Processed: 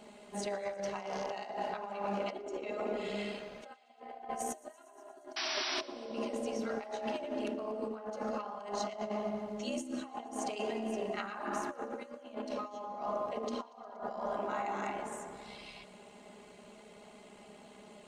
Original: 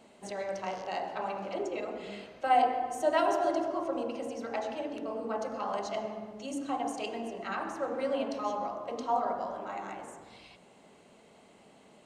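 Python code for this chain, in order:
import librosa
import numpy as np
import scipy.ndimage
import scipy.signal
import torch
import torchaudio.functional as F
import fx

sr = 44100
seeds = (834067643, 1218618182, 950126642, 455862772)

y = fx.over_compress(x, sr, threshold_db=-38.0, ratio=-0.5)
y = fx.stretch_grains(y, sr, factor=1.5, grain_ms=29.0)
y = fx.spec_paint(y, sr, seeds[0], shape='noise', start_s=5.36, length_s=0.45, low_hz=610.0, high_hz=5900.0, level_db=-36.0)
y = fx.echo_thinned(y, sr, ms=118, feedback_pct=79, hz=550.0, wet_db=-22.0)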